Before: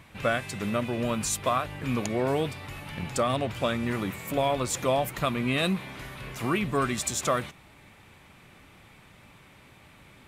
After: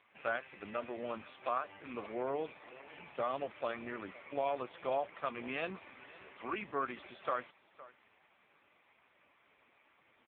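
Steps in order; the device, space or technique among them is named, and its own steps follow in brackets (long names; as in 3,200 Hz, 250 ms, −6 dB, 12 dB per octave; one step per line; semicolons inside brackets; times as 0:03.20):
satellite phone (band-pass filter 390–3,300 Hz; single-tap delay 512 ms −19 dB; level −7 dB; AMR narrowband 5.15 kbit/s 8,000 Hz)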